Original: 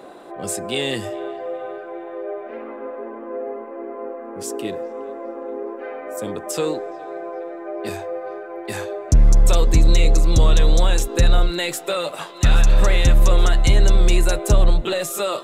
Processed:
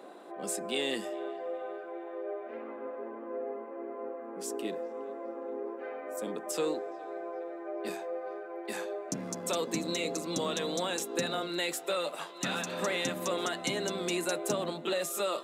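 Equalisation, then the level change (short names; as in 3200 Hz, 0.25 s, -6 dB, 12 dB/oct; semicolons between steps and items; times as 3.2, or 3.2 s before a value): steep high-pass 180 Hz 36 dB/oct; -8.5 dB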